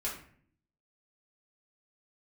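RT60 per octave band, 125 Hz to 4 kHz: 0.85, 0.90, 0.60, 0.50, 0.55, 0.35 s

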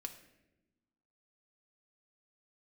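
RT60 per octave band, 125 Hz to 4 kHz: 1.5, 1.6, 1.2, 0.75, 0.85, 0.65 s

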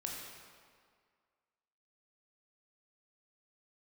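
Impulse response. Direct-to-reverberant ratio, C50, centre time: -1.5 dB, 1.0 dB, 89 ms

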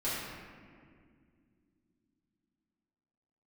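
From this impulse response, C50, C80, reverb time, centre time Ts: -2.0 dB, 0.0 dB, 2.1 s, 0.117 s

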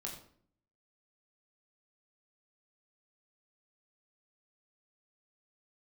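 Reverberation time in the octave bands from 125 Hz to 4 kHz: 0.85, 0.80, 0.60, 0.50, 0.45, 0.40 s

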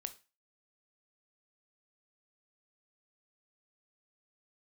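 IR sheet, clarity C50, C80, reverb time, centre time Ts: 16.0 dB, 22.5 dB, 0.30 s, 5 ms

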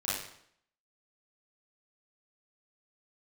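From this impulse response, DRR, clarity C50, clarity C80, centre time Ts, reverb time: -10.0 dB, 0.0 dB, 4.5 dB, 63 ms, 0.65 s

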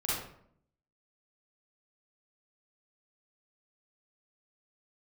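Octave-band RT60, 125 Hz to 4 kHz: 0.85, 0.90, 0.70, 0.60, 0.55, 0.40 s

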